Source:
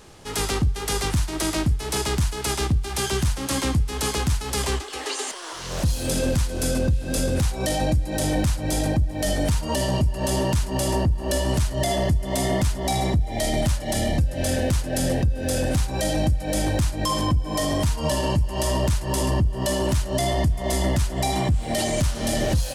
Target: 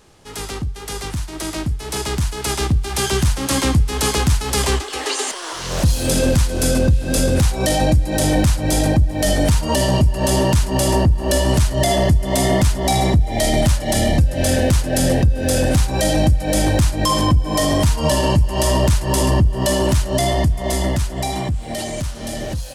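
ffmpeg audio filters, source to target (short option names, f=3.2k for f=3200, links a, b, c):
-af "dynaudnorm=f=430:g=11:m=11dB,volume=-3.5dB"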